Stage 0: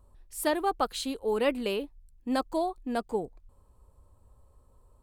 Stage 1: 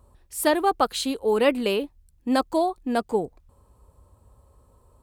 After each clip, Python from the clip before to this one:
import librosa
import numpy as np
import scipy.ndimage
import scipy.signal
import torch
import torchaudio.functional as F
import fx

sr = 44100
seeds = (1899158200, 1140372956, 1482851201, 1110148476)

y = scipy.signal.sosfilt(scipy.signal.butter(2, 51.0, 'highpass', fs=sr, output='sos'), x)
y = F.gain(torch.from_numpy(y), 6.5).numpy()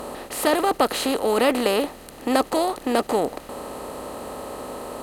y = fx.bin_compress(x, sr, power=0.4)
y = F.gain(torch.from_numpy(y), -2.5).numpy()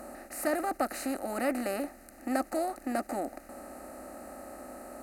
y = fx.fixed_phaser(x, sr, hz=670.0, stages=8)
y = F.gain(torch.from_numpy(y), -8.0).numpy()